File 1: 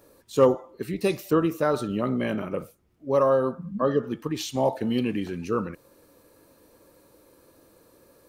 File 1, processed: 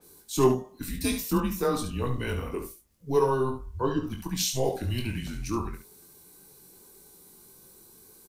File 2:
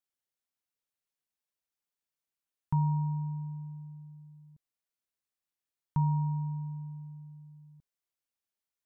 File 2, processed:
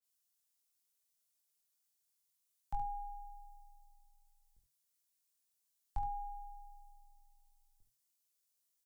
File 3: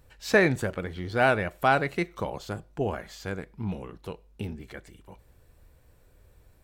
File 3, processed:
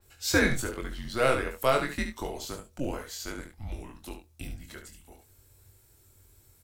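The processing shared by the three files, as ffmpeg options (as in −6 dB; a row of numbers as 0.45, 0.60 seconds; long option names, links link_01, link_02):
-filter_complex "[0:a]bass=frequency=250:gain=-2,treble=frequency=4000:gain=14,afreqshift=-130,asplit=2[link_01][link_02];[link_02]adelay=23,volume=-8dB[link_03];[link_01][link_03]amix=inputs=2:normalize=0,aecho=1:1:21|71:0.398|0.398,adynamicequalizer=threshold=0.01:dfrequency=4800:dqfactor=0.7:tfrequency=4800:tqfactor=0.7:attack=5:release=100:ratio=0.375:range=2.5:mode=cutabove:tftype=highshelf,volume=-4.5dB"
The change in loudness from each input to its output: −3.0, −12.0, −2.0 LU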